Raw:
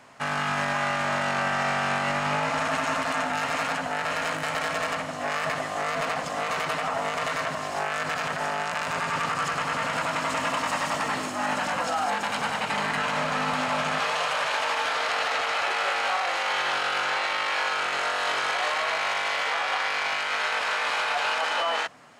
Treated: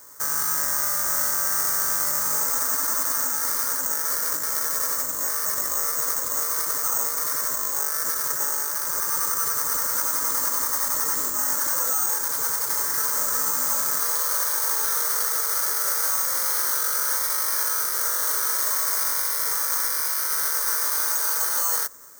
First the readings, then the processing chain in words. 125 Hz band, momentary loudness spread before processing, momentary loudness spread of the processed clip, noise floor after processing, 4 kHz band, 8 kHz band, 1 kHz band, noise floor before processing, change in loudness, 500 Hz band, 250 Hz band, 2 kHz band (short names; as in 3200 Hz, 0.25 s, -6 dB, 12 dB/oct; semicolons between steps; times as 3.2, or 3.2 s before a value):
under -10 dB, 3 LU, 2 LU, -27 dBFS, -3.0 dB, +17.5 dB, -6.5 dB, -32 dBFS, +5.0 dB, -8.5 dB, -10.0 dB, -7.5 dB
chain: limiter -20.5 dBFS, peak gain reduction 4.5 dB; careless resampling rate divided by 6×, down none, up zero stuff; fixed phaser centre 730 Hz, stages 6; gain -1 dB